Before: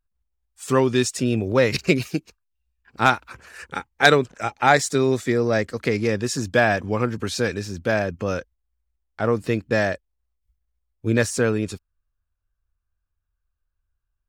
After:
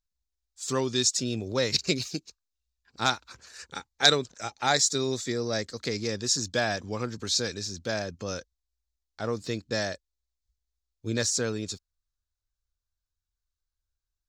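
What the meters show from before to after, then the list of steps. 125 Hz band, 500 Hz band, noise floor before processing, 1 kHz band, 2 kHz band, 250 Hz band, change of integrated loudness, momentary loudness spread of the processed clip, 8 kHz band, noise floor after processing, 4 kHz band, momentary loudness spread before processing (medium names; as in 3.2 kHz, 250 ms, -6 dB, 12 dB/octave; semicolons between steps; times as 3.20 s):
-9.5 dB, -9.5 dB, -78 dBFS, -9.5 dB, -9.5 dB, -9.5 dB, -6.0 dB, 15 LU, +3.0 dB, under -85 dBFS, +3.0 dB, 13 LU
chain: high-order bell 5.2 kHz +14 dB 1.3 oct; trim -9.5 dB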